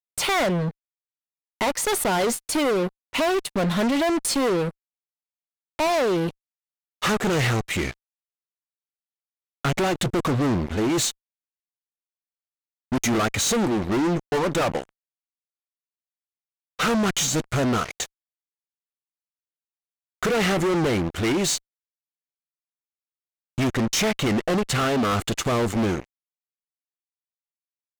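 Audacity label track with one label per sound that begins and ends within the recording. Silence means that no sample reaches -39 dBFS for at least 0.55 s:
1.610000	4.710000	sound
5.790000	6.310000	sound
7.020000	7.940000	sound
9.650000	11.110000	sound
12.920000	14.890000	sound
16.790000	18.060000	sound
20.230000	21.580000	sound
23.580000	26.040000	sound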